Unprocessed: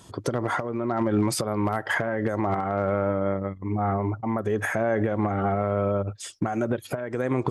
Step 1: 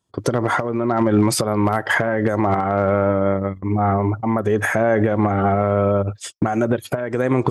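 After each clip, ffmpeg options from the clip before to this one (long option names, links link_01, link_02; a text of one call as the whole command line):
ffmpeg -i in.wav -af "agate=range=-32dB:threshold=-37dB:ratio=16:detection=peak,volume=7dB" out.wav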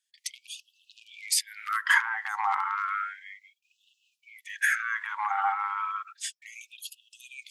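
ffmpeg -i in.wav -af "afftfilt=real='re*gte(b*sr/1024,740*pow(2600/740,0.5+0.5*sin(2*PI*0.32*pts/sr)))':imag='im*gte(b*sr/1024,740*pow(2600/740,0.5+0.5*sin(2*PI*0.32*pts/sr)))':win_size=1024:overlap=0.75,volume=-2dB" out.wav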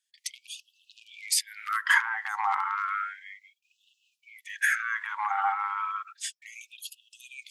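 ffmpeg -i in.wav -af anull out.wav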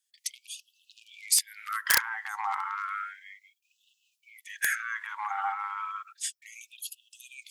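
ffmpeg -i in.wav -af "aeval=exprs='(mod(4.22*val(0)+1,2)-1)/4.22':channel_layout=same,crystalizer=i=1.5:c=0,volume=-4.5dB" out.wav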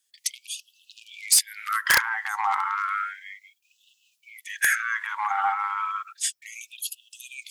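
ffmpeg -i in.wav -af "asoftclip=type=tanh:threshold=-15.5dB,volume=7dB" out.wav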